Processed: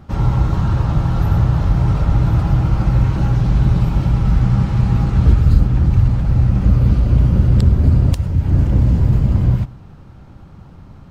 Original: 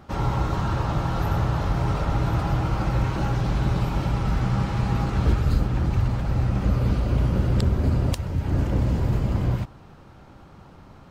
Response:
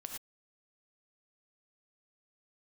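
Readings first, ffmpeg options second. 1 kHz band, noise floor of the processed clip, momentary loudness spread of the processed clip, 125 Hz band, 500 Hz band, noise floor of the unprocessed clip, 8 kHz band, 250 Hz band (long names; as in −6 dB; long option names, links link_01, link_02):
0.0 dB, −40 dBFS, 4 LU, +9.5 dB, +1.0 dB, −48 dBFS, can't be measured, +7.0 dB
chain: -filter_complex "[0:a]bass=frequency=250:gain=10,treble=frequency=4000:gain=0,asplit=2[link_01][link_02];[1:a]atrim=start_sample=2205[link_03];[link_02][link_03]afir=irnorm=-1:irlink=0,volume=-13dB[link_04];[link_01][link_04]amix=inputs=2:normalize=0,volume=-1dB"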